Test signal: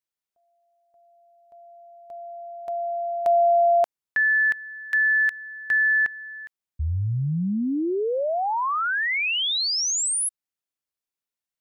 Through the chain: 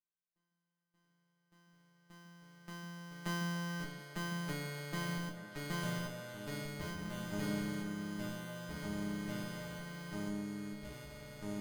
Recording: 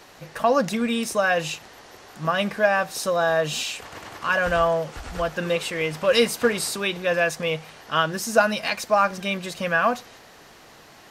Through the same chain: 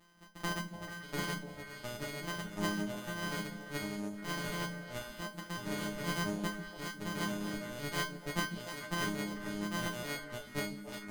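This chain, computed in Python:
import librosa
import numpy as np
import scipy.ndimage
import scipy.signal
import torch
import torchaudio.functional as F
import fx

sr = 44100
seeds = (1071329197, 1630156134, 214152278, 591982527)

y = np.r_[np.sort(x[:len(x) // 256 * 256].reshape(-1, 256), axis=1).ravel(), x[len(x) // 256 * 256:]]
y = fx.dereverb_blind(y, sr, rt60_s=1.8)
y = fx.echo_pitch(y, sr, ms=610, semitones=-3, count=3, db_per_echo=-3.0)
y = fx.resonator_bank(y, sr, root=56, chord='fifth', decay_s=0.27)
y = fx.echo_stepped(y, sr, ms=146, hz=220.0, octaves=1.4, feedback_pct=70, wet_db=-4.0)
y = y * librosa.db_to_amplitude(2.5)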